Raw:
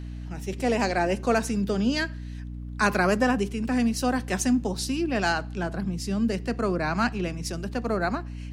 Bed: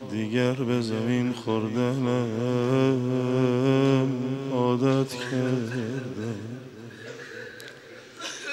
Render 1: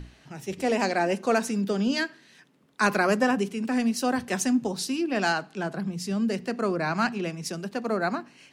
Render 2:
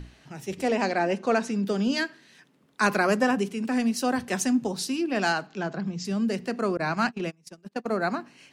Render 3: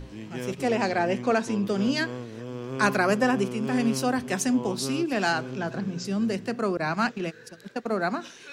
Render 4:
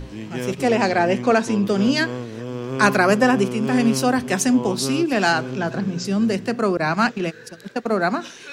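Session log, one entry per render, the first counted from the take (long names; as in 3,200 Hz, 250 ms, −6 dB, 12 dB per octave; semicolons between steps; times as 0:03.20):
mains-hum notches 60/120/180/240/300 Hz
0:00.68–0:01.65: high-frequency loss of the air 68 metres; 0:05.47–0:06.05: Butterworth low-pass 7,400 Hz 72 dB per octave; 0:06.77–0:07.98: noise gate −31 dBFS, range −26 dB
mix in bed −11 dB
level +6.5 dB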